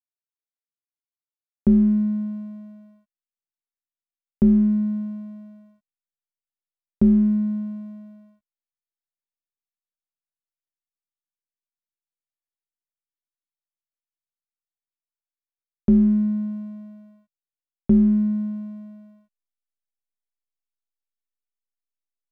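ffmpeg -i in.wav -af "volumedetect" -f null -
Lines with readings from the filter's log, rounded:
mean_volume: -26.2 dB
max_volume: -8.4 dB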